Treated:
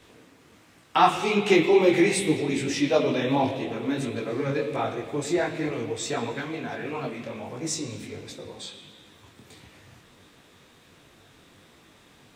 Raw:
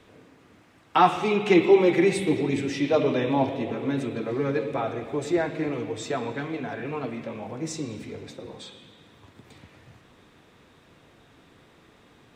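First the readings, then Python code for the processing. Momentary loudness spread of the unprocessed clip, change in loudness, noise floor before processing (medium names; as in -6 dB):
16 LU, 0.0 dB, -57 dBFS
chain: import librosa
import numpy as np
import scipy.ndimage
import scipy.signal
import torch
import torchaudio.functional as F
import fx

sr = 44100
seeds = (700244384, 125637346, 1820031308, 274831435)

y = fx.high_shelf(x, sr, hz=3700.0, db=10.0)
y = fx.detune_double(y, sr, cents=50)
y = y * 10.0 ** (3.0 / 20.0)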